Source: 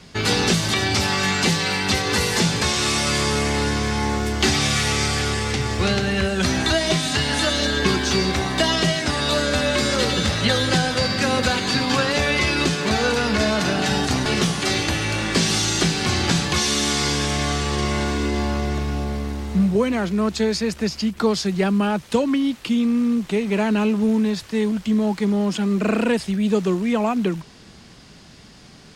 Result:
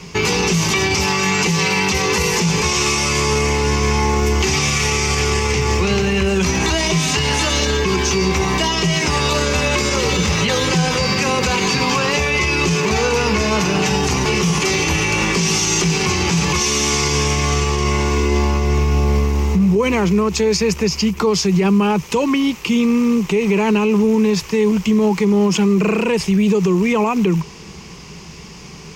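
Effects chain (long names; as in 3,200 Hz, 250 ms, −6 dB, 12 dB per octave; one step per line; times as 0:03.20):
EQ curve with evenly spaced ripples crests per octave 0.77, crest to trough 10 dB
brickwall limiter −16.5 dBFS, peak gain reduction 14 dB
level +8 dB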